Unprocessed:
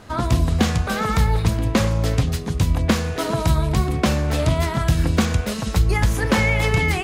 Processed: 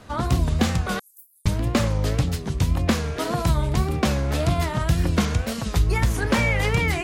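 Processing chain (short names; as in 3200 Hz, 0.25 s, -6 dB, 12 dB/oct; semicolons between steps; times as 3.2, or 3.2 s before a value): 0.99–1.46 inverse Chebyshev high-pass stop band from 2300 Hz, stop band 80 dB; wow and flutter 120 cents; gain -2.5 dB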